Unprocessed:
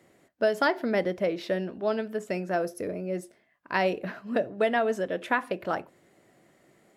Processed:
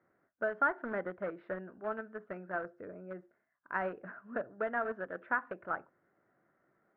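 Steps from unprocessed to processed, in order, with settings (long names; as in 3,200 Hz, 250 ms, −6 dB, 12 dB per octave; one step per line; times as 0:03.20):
in parallel at −10 dB: bit reduction 4 bits
on the sum: transistor ladder low-pass 1,600 Hz, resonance 65%
level −3.5 dB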